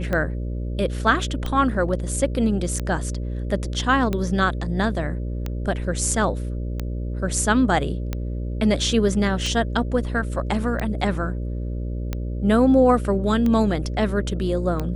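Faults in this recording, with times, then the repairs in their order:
buzz 60 Hz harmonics 10 -27 dBFS
tick 45 rpm -13 dBFS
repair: de-click; de-hum 60 Hz, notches 10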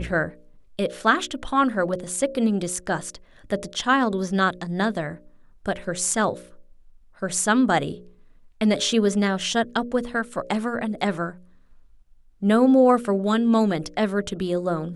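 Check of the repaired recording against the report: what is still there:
nothing left

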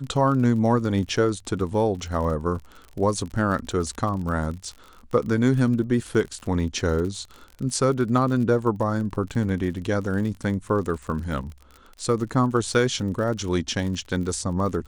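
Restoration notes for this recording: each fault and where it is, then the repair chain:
crackle 44 per s -32 dBFS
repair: de-click

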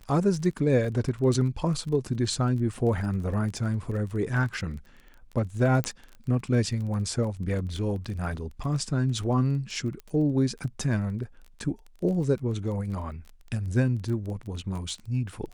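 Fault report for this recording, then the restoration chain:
crackle 23 per s -35 dBFS
5.84 s: pop -13 dBFS
10.00 s: pop -28 dBFS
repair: de-click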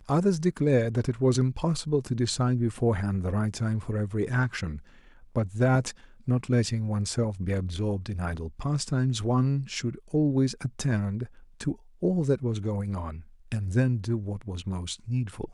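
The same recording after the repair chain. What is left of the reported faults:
nothing left

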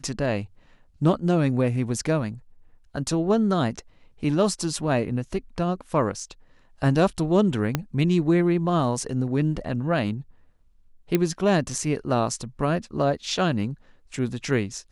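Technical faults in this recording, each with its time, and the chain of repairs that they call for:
7.75 s: pop -8 dBFS
11.15 s: pop -8 dBFS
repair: de-click

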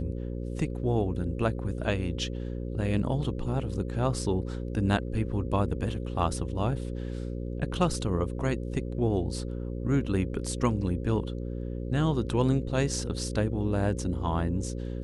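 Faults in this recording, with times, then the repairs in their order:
buzz 60 Hz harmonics 9 -34 dBFS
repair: de-hum 60 Hz, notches 9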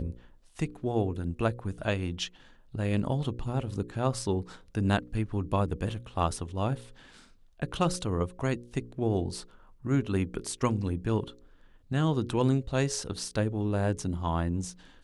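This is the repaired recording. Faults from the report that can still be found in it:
nothing left

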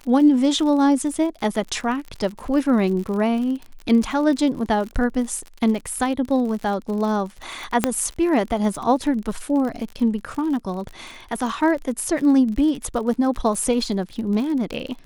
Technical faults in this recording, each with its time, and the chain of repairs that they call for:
crackle 51 per s -29 dBFS
7.84 s: pop -2 dBFS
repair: de-click

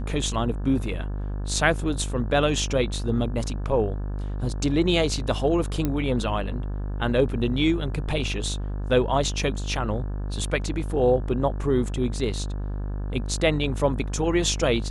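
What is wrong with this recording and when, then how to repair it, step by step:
buzz 50 Hz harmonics 35 -29 dBFS
5.85 s: pop -12 dBFS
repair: de-click; de-hum 50 Hz, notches 35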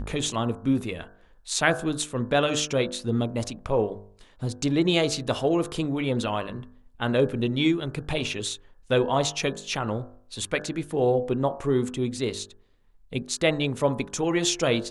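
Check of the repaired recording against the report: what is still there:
nothing left

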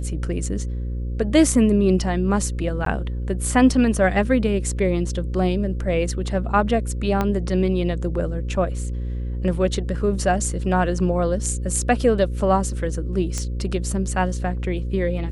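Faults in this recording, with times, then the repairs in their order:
buzz 60 Hz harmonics 9 -26 dBFS
2.85–2.86 s: dropout 13 ms
7.21 s: pop -9 dBFS
13.38 s: pop -13 dBFS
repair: de-click; de-hum 60 Hz, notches 9; interpolate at 2.85 s, 13 ms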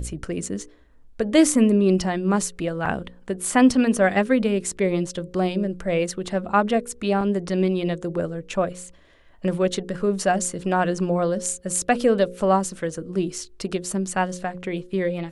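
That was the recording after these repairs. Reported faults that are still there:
7.21 s: pop

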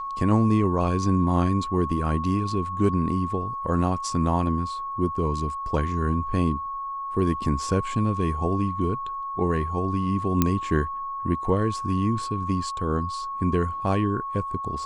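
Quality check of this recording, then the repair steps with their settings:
whine 1.1 kHz -29 dBFS
10.42 s: pop -6 dBFS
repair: de-click; band-stop 1.1 kHz, Q 30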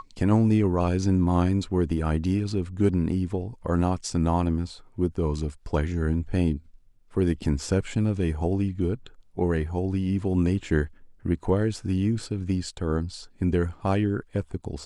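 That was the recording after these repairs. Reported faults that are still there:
nothing left

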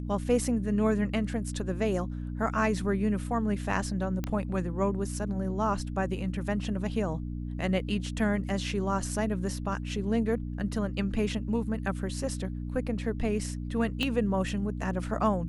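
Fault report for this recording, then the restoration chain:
hum 60 Hz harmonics 5 -35 dBFS
4.24 s: pop -18 dBFS
14.03 s: pop -17 dBFS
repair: de-click; de-hum 60 Hz, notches 5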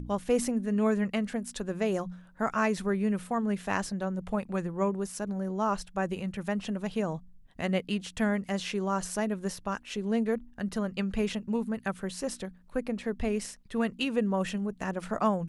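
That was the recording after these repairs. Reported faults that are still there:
14.03 s: pop

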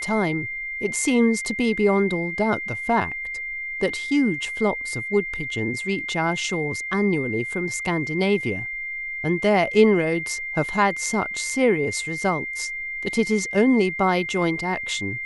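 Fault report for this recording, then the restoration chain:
whine 2.1 kHz -28 dBFS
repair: band-stop 2.1 kHz, Q 30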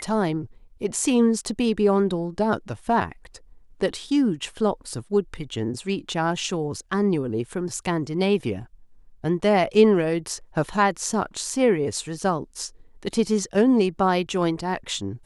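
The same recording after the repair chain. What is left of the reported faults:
nothing left

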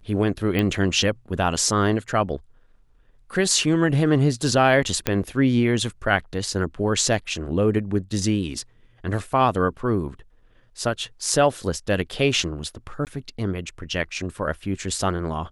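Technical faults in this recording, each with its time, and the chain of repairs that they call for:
0.59 s: pop -11 dBFS
5.07 s: pop -5 dBFS
13.05–13.07 s: dropout 18 ms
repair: de-click; interpolate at 13.05 s, 18 ms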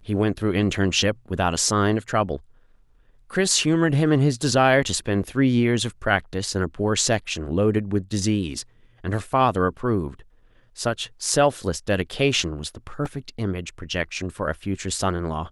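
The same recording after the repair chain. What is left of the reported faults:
nothing left

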